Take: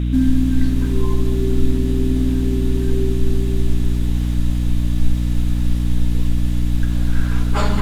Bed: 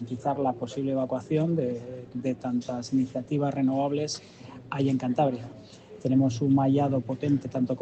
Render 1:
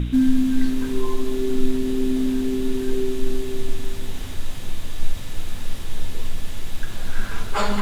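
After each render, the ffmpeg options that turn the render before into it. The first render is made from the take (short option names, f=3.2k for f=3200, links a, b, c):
-af "bandreject=f=60:t=h:w=4,bandreject=f=120:t=h:w=4,bandreject=f=180:t=h:w=4,bandreject=f=240:t=h:w=4,bandreject=f=300:t=h:w=4,bandreject=f=360:t=h:w=4,bandreject=f=420:t=h:w=4,bandreject=f=480:t=h:w=4,bandreject=f=540:t=h:w=4,bandreject=f=600:t=h:w=4"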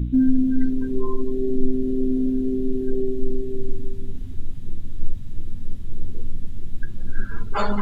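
-af "afftdn=nr=21:nf=-28"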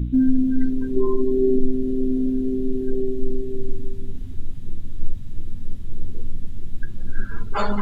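-filter_complex "[0:a]asettb=1/sr,asplit=3[a][b][c];[a]atrim=end=0.964[d];[b]atrim=start=0.96:end=1.59,asetpts=PTS-STARTPTS,afade=t=in:d=0.004:c=qsin,afade=t=out:st=0.626:d=0.004:c=qsin,equalizer=f=350:w=1.5:g=7.5[e];[c]atrim=start=1.586[f];[d][e]acrossfade=d=0.004:c1=hsin:c2=qsin[g];[g][f]acrossfade=d=0.004:c1=qsin:c2=hsin"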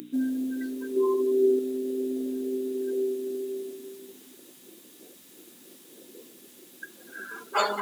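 -af "highpass=f=330:w=0.5412,highpass=f=330:w=1.3066,aemphasis=mode=production:type=75fm"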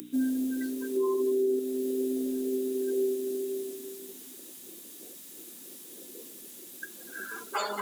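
-filter_complex "[0:a]acrossover=split=560|780|5300[a][b][c][d];[d]acontrast=83[e];[a][b][c][e]amix=inputs=4:normalize=0,alimiter=limit=-20.5dB:level=0:latency=1:release=291"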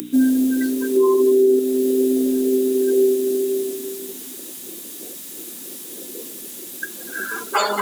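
-af "volume=12dB"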